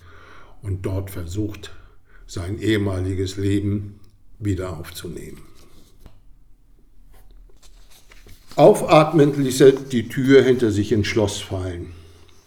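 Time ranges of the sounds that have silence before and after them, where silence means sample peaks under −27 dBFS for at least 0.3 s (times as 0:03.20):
0:00.66–0:01.67
0:02.32–0:03.85
0:04.42–0:05.33
0:08.52–0:11.84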